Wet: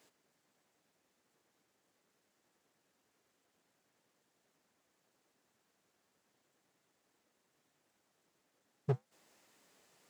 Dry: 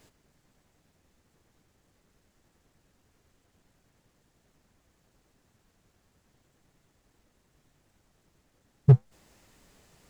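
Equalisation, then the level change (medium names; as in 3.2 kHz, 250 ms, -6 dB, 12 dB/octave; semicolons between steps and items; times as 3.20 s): Bessel high-pass 330 Hz, order 2; -6.0 dB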